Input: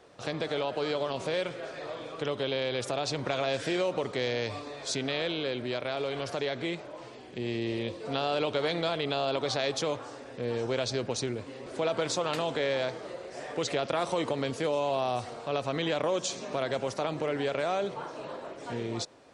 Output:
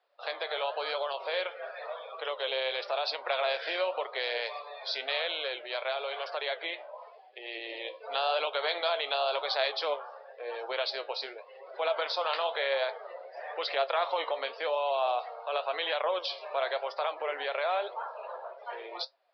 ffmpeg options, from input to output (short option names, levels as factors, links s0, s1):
-af "highpass=f=590:w=0.5412,highpass=f=590:w=1.3066,afftdn=nr=19:nf=-45,flanger=delay=7.3:depth=8.1:regen=70:speed=0.94:shape=sinusoidal,aresample=11025,aresample=44100,volume=2.24"